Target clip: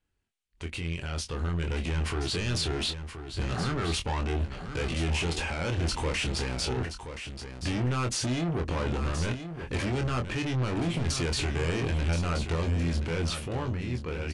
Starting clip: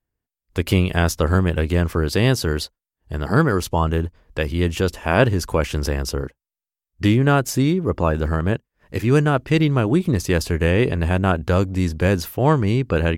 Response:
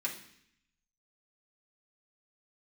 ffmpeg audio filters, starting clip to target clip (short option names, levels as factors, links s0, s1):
-filter_complex "[0:a]equalizer=f=3100:w=1.3:g=8.5,bandreject=f=690:w=12,areverse,acompressor=threshold=0.0562:ratio=6,areverse,alimiter=level_in=1.19:limit=0.0631:level=0:latency=1:release=53,volume=0.841,dynaudnorm=f=290:g=11:m=3.76,asoftclip=type=tanh:threshold=0.0398,asplit=2[s0][s1];[s1]adelay=22,volume=0.501[s2];[s0][s2]amix=inputs=2:normalize=0,aecho=1:1:942:0.335,asetrate=40517,aresample=44100,aresample=22050,aresample=44100" -ar 48000 -c:a ac3 -b:a 128k